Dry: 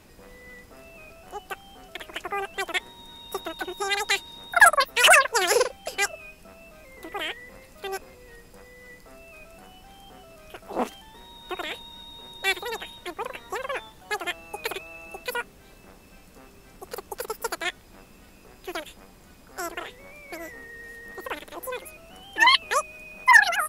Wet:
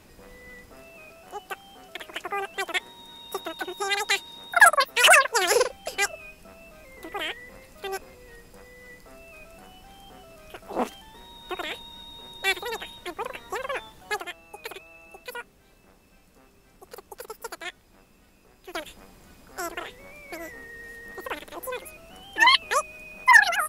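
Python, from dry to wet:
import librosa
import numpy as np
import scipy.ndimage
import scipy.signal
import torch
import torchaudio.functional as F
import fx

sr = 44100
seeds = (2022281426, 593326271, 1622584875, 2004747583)

y = fx.low_shelf(x, sr, hz=100.0, db=-10.0, at=(0.84, 5.47))
y = fx.edit(y, sr, fx.clip_gain(start_s=14.22, length_s=4.52, db=-7.0), tone=tone)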